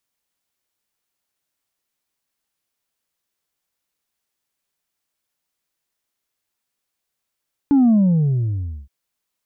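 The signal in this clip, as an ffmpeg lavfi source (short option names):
-f lavfi -i "aevalsrc='0.282*clip((1.17-t)/0.99,0,1)*tanh(1.26*sin(2*PI*290*1.17/log(65/290)*(exp(log(65/290)*t/1.17)-1)))/tanh(1.26)':d=1.17:s=44100"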